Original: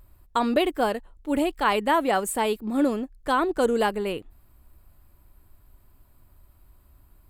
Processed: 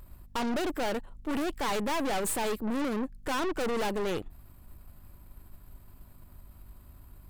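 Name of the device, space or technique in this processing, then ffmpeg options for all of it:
valve amplifier with mains hum: -af "aeval=exprs='(tanh(63.1*val(0)+0.65)-tanh(0.65))/63.1':c=same,aeval=exprs='val(0)+0.000708*(sin(2*PI*50*n/s)+sin(2*PI*2*50*n/s)/2+sin(2*PI*3*50*n/s)/3+sin(2*PI*4*50*n/s)/4+sin(2*PI*5*50*n/s)/5)':c=same,volume=2.24"

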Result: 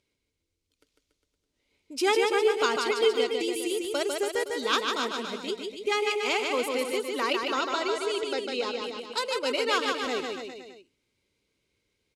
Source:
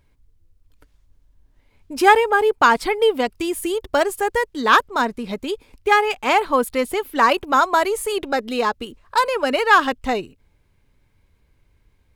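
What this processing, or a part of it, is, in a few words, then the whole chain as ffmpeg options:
piezo pickup straight into a mixer: -filter_complex "[0:a]lowpass=5400,aderivative,bandreject=f=1700:w=6.9,asettb=1/sr,asplit=3[s0][s1][s2];[s0]atrim=end=7.084[s3];[s1]atrim=start=7.08:end=8.84,asetpts=PTS-STARTPTS,afade=t=in:d=0.004:c=qsin,afade=t=out:st=1.756:d=0.004:c=qsin,lowpass=5800[s4];[s2]atrim=start=8.836[s5];[s3][s4]acrossfade=d=0.004:c1=hsin:c2=qsin[s6];[s6][s5]acrossfade=d=0.004:c1=qsin:c2=hsin,lowshelf=f=600:t=q:w=1.5:g=11.5,aecho=1:1:150|285|406.5|515.8|614.3:0.631|0.398|0.251|0.158|0.1,volume=1.5"

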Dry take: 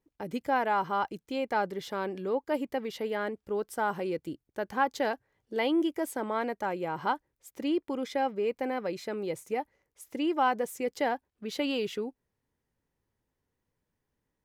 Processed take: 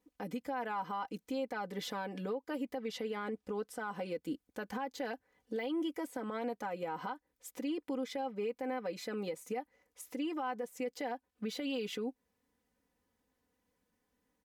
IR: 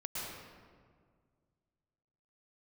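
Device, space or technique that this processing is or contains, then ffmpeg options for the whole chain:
podcast mastering chain: -filter_complex "[0:a]asettb=1/sr,asplit=3[s0][s1][s2];[s0]atrim=end=2.784[s3];[s1]atrim=start=2.78:end=4.09,asetpts=PTS-STARTPTS,afade=t=in:d=0.004:c=qsin,afade=t=out:st=1.306:d=0.004:c=qsin,lowpass=11000[s4];[s2]atrim=start=4.086[s5];[s3][s4]acrossfade=d=0.004:c1=hsin:c2=qsin[s6];[s6][s5]acrossfade=d=0.004:c1=qsin:c2=hsin,highpass=f=91:p=1,aecho=1:1:4:0.81,deesser=0.95,acompressor=threshold=0.0355:ratio=2.5,alimiter=level_in=2.11:limit=0.0631:level=0:latency=1:release=299,volume=0.473,volume=1.26" -ar 48000 -c:a libmp3lame -b:a 128k

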